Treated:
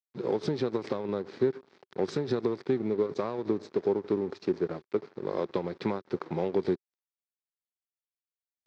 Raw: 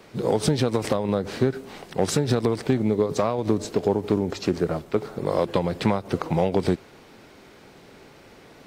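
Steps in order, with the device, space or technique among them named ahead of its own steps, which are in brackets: blown loudspeaker (crossover distortion -37 dBFS; speaker cabinet 140–5100 Hz, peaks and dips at 380 Hz +8 dB, 670 Hz -4 dB, 2900 Hz -6 dB); gain -8 dB

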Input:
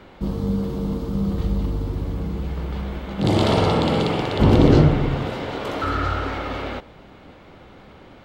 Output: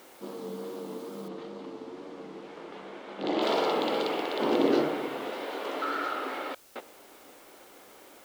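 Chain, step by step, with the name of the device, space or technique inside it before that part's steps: HPF 300 Hz 24 dB/oct; worn cassette (LPF 6600 Hz; wow and flutter; level dips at 6.55, 0.203 s -29 dB; white noise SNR 25 dB); 1.28–3.42 air absorption 110 m; gain -6 dB

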